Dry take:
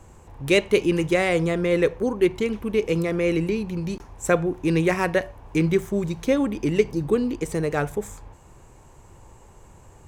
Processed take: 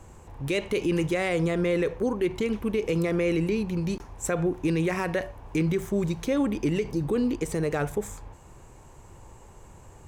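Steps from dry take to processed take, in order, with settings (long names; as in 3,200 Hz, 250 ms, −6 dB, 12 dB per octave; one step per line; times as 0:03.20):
brickwall limiter −17.5 dBFS, peak gain reduction 11 dB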